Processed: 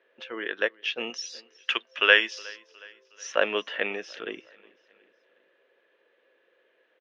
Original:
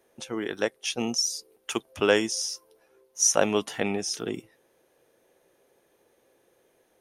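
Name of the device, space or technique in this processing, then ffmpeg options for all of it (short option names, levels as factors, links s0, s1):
phone earpiece: -filter_complex "[0:a]lowpass=8300,asettb=1/sr,asplit=3[s0][s1][s2];[s0]atrim=end=1.104[s3];[s1]atrim=start=1.1:end=2.39,asetpts=PTS-STARTPTS,afade=t=in:d=0.004:c=qsin,afade=t=out:st=1.286:d=0.004:c=qsin,tiltshelf=f=780:g=-6.5[s4];[s2]atrim=start=2.386[s5];[s3][s4]acrossfade=d=0.004:c1=hsin:c2=qsin[s6];[s6][s5]acrossfade=d=0.004:c1=qsin:c2=hsin,highpass=470,equalizer=f=510:t=q:w=4:g=3,equalizer=f=790:t=q:w=4:g=-10,equalizer=f=1700:t=q:w=4:g=8,equalizer=f=2800:t=q:w=4:g=6,lowpass=f=3600:w=0.5412,lowpass=f=3600:w=1.3066,aecho=1:1:365|730|1095:0.0631|0.0322|0.0164"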